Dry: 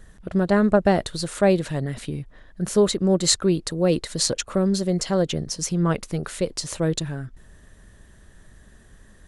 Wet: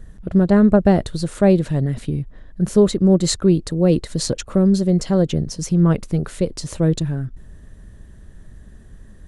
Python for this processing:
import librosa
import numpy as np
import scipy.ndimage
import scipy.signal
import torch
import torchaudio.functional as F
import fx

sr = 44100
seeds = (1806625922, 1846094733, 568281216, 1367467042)

y = fx.low_shelf(x, sr, hz=450.0, db=12.0)
y = F.gain(torch.from_numpy(y), -3.0).numpy()